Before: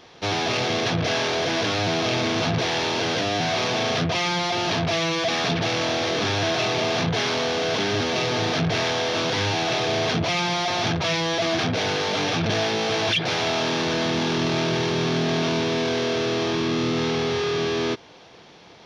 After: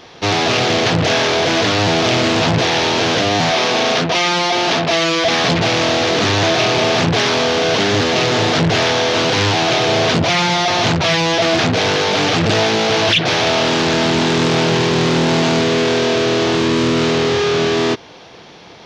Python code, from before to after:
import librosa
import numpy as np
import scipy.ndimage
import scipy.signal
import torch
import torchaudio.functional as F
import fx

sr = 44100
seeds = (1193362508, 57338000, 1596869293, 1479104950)

y = fx.highpass(x, sr, hz=210.0, slope=12, at=(3.51, 5.25))
y = fx.doppler_dist(y, sr, depth_ms=0.62)
y = y * librosa.db_to_amplitude(8.5)